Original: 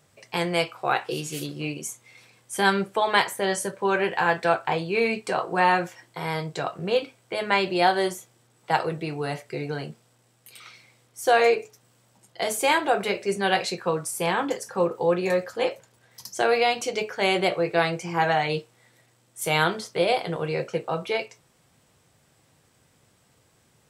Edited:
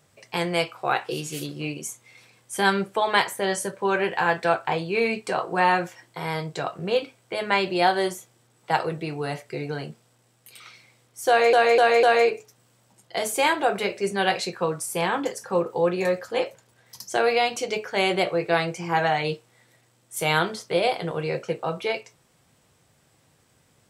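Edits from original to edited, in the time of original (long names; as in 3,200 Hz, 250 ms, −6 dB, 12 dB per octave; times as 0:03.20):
0:11.28–0:11.53: repeat, 4 plays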